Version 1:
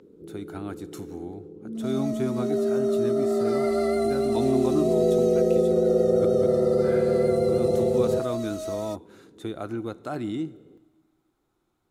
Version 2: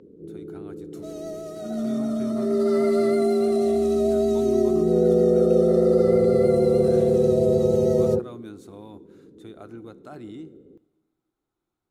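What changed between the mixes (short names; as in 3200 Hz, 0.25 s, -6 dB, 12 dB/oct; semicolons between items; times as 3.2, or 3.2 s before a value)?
speech -9.5 dB; first sound: add tilt shelf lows +5 dB, about 820 Hz; second sound: entry -0.80 s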